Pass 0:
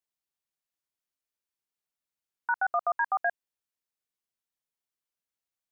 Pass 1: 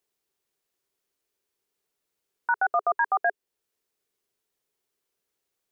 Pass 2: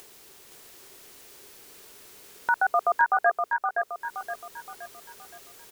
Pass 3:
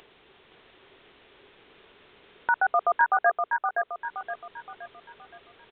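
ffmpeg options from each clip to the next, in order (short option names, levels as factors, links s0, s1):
-af "equalizer=f=410:w=2.7:g=13,alimiter=limit=0.0631:level=0:latency=1:release=448,volume=2.66"
-filter_complex "[0:a]acompressor=mode=upward:threshold=0.0398:ratio=2.5,asplit=2[s0][s1];[s1]aecho=0:1:520|1040|1560|2080|2600:0.596|0.25|0.105|0.0441|0.0185[s2];[s0][s2]amix=inputs=2:normalize=0,volume=1.12"
-af "aresample=8000,aresample=44100"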